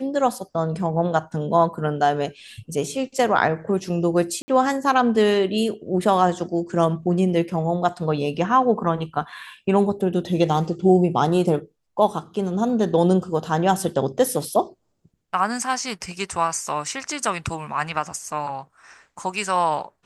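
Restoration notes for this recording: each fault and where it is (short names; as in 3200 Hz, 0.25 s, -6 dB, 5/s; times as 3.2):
4.42–4.48 gap 60 ms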